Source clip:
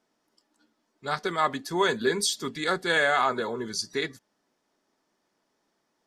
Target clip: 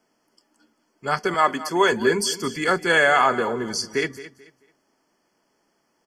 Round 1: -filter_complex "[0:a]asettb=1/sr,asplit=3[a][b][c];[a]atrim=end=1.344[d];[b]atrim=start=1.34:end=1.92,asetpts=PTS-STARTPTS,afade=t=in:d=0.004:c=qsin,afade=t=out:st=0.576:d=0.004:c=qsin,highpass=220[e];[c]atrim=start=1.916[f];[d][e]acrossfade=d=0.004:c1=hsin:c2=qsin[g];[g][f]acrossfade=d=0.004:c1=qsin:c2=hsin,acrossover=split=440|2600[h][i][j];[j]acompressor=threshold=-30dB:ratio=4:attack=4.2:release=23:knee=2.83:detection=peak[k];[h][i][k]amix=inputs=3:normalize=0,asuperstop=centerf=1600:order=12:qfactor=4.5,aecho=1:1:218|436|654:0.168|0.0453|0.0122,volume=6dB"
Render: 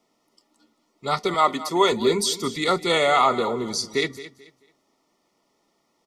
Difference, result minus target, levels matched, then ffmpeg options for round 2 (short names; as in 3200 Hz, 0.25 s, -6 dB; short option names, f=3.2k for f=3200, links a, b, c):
2000 Hz band -6.0 dB
-filter_complex "[0:a]asettb=1/sr,asplit=3[a][b][c];[a]atrim=end=1.344[d];[b]atrim=start=1.34:end=1.92,asetpts=PTS-STARTPTS,afade=t=in:d=0.004:c=qsin,afade=t=out:st=0.576:d=0.004:c=qsin,highpass=220[e];[c]atrim=start=1.916[f];[d][e]acrossfade=d=0.004:c1=hsin:c2=qsin[g];[g][f]acrossfade=d=0.004:c1=qsin:c2=hsin,acrossover=split=440|2600[h][i][j];[j]acompressor=threshold=-30dB:ratio=4:attack=4.2:release=23:knee=2.83:detection=peak[k];[h][i][k]amix=inputs=3:normalize=0,asuperstop=centerf=3800:order=12:qfactor=4.5,aecho=1:1:218|436|654:0.168|0.0453|0.0122,volume=6dB"